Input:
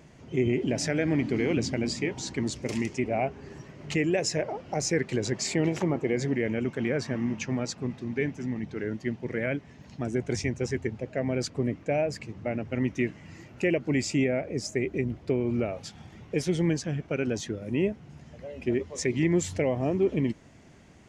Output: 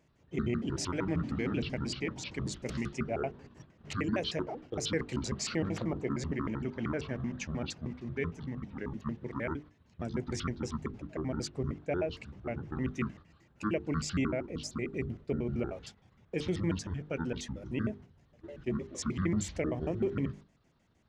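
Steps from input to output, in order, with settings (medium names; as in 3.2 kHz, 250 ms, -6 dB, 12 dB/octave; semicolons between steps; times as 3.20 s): pitch shift switched off and on -9 st, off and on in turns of 77 ms; gate -43 dBFS, range -10 dB; hum notches 50/100/150/200/250/300/350/400/450 Hz; trim -5 dB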